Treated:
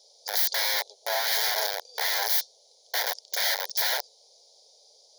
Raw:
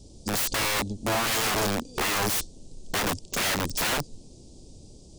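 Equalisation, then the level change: brick-wall FIR high-pass 370 Hz; treble shelf 2.7 kHz +7.5 dB; static phaser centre 1.8 kHz, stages 8; -1.0 dB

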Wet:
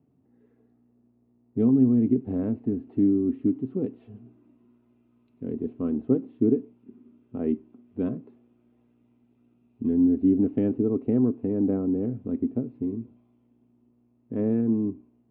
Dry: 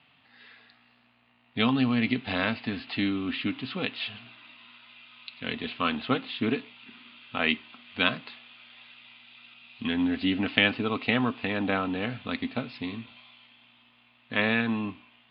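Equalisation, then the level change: resonant low-pass 370 Hz, resonance Q 4; bass shelf 240 Hz +7.5 dB; -3.0 dB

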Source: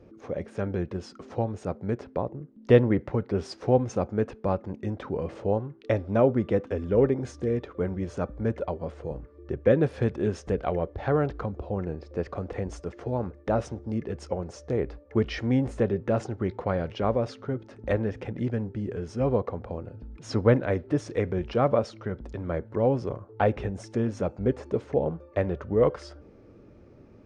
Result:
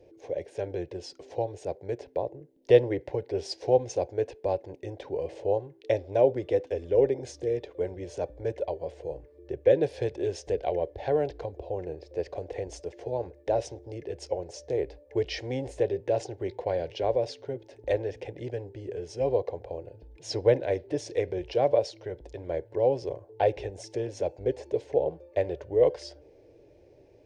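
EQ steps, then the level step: bass shelf 170 Hz -10 dB; dynamic bell 4.8 kHz, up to +4 dB, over -54 dBFS, Q 1.6; static phaser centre 520 Hz, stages 4; +2.0 dB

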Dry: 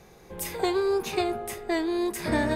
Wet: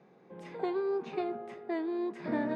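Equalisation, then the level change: Chebyshev high-pass 170 Hz, order 3; tape spacing loss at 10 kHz 37 dB; peaking EQ 260 Hz +5 dB 0.22 oct; -4.5 dB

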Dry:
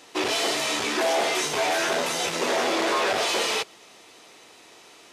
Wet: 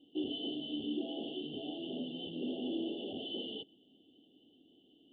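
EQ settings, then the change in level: cascade formant filter i; brick-wall FIR band-stop 860–2700 Hz; +1.0 dB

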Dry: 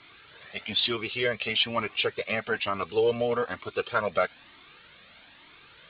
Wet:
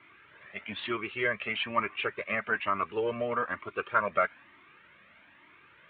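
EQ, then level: dynamic bell 1.3 kHz, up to +5 dB, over -40 dBFS, Q 1.2; cabinet simulation 100–2300 Hz, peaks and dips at 110 Hz -4 dB, 160 Hz -6 dB, 250 Hz -4 dB, 470 Hz -8 dB, 760 Hz -9 dB, 1.4 kHz -3 dB; 0.0 dB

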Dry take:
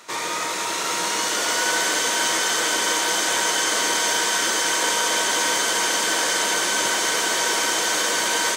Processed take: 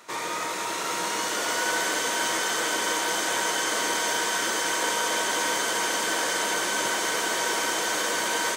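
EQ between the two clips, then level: peaking EQ 5.2 kHz -4.5 dB 2.3 oct; -2.5 dB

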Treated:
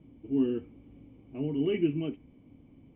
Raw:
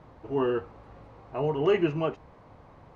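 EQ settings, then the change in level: dynamic bell 1.7 kHz, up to +6 dB, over -47 dBFS, Q 1.5; cascade formant filter i; +7.5 dB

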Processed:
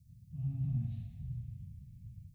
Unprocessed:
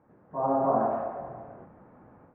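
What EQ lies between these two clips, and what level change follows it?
inverse Chebyshev band-stop 340–1500 Hz, stop band 60 dB; +14.0 dB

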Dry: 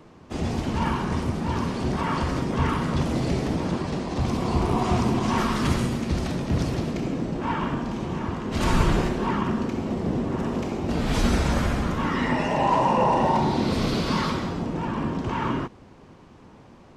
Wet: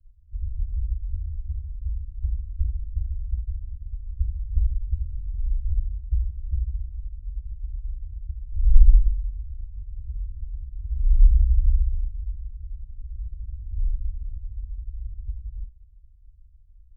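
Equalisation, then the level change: inverse Chebyshev band-stop 220–8500 Hz, stop band 60 dB; RIAA curve playback; amplifier tone stack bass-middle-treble 10-0-1; 0.0 dB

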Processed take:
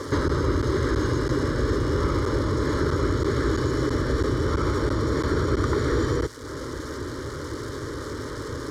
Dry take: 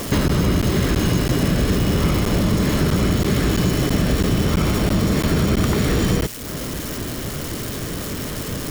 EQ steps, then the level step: high-pass 62 Hz; low-pass 4.3 kHz 12 dB/octave; static phaser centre 710 Hz, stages 6; 0.0 dB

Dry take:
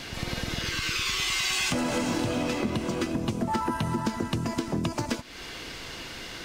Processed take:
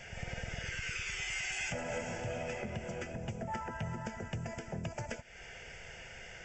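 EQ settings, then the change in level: brick-wall FIR low-pass 8 kHz; static phaser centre 1.1 kHz, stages 6; -6.0 dB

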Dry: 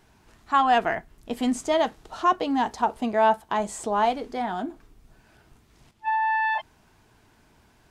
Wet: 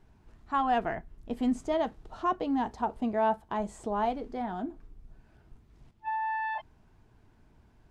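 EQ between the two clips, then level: tilt EQ -2.5 dB/octave; -8.0 dB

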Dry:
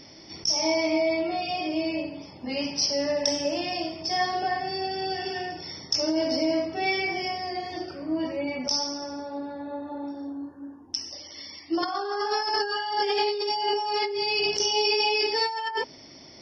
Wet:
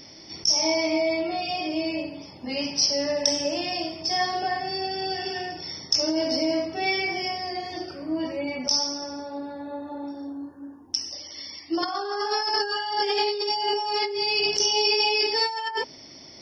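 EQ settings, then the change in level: treble shelf 6 kHz +8 dB; 0.0 dB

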